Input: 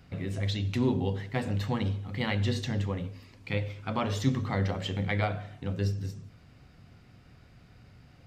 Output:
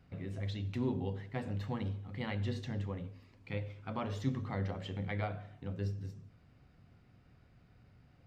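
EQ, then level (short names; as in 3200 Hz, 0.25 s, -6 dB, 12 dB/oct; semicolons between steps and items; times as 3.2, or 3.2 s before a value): high shelf 3200 Hz -8.5 dB; -7.5 dB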